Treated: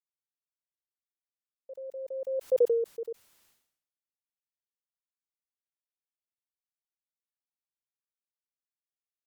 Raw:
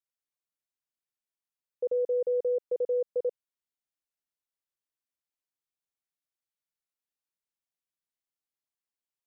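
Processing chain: Doppler pass-by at 2.60 s, 25 m/s, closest 1.9 m; decay stretcher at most 81 dB/s; trim +7.5 dB

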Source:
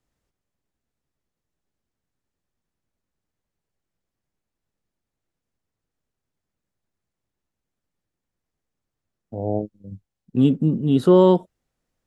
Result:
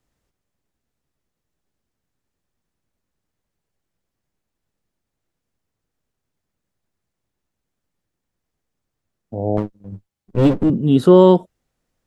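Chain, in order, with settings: 9.57–10.70 s: comb filter that takes the minimum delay 9.9 ms; trim +4 dB

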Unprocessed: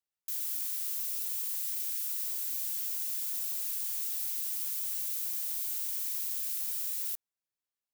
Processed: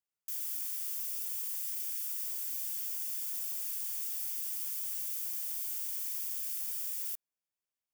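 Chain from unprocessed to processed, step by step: band-stop 4 kHz, Q 6.4; trim -2.5 dB

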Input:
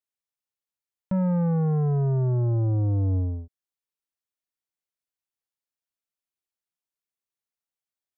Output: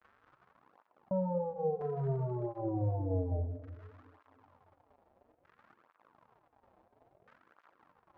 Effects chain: high-order bell 570 Hz +10 dB; peak limiter -27.5 dBFS, peak gain reduction 13.5 dB; crackle 130 per s -39 dBFS; LFO low-pass saw down 0.55 Hz 590–1500 Hz; on a send at -8.5 dB: reverberation RT60 1.5 s, pre-delay 4 ms; on the sum: cancelling through-zero flanger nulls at 0.59 Hz, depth 7.4 ms

